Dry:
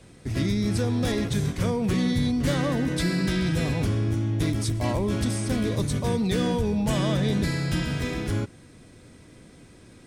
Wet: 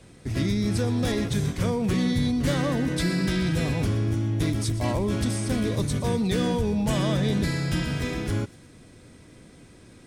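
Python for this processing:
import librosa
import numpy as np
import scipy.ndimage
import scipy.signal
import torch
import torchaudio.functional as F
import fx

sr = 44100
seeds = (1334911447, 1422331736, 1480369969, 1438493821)

y = fx.echo_wet_highpass(x, sr, ms=120, feedback_pct=52, hz=4000.0, wet_db=-15)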